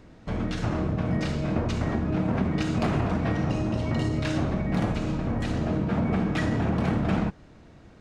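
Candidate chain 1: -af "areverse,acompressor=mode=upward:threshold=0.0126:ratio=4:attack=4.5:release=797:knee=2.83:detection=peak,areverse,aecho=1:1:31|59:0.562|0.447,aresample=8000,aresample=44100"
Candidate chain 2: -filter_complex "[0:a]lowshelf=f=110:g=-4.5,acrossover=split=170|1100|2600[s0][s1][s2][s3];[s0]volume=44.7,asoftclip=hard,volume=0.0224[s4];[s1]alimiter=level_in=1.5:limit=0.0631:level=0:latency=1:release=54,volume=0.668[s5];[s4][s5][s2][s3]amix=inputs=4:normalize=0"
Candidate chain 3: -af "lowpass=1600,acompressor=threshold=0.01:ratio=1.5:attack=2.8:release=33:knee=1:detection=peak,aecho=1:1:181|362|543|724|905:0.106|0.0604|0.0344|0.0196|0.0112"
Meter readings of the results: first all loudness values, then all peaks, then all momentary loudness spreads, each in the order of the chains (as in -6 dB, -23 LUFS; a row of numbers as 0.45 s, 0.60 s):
-26.5 LUFS, -31.5 LUFS, -33.0 LUFS; -12.0 dBFS, -17.0 dBFS, -20.5 dBFS; 4 LU, 2 LU, 3 LU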